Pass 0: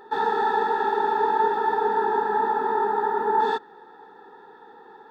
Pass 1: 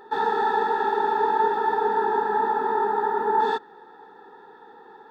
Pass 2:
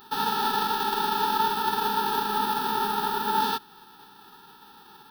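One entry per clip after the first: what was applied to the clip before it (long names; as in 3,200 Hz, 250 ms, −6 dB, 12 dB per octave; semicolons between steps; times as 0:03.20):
no processing that can be heard
spectral envelope flattened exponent 0.3; phaser with its sweep stopped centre 2,100 Hz, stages 6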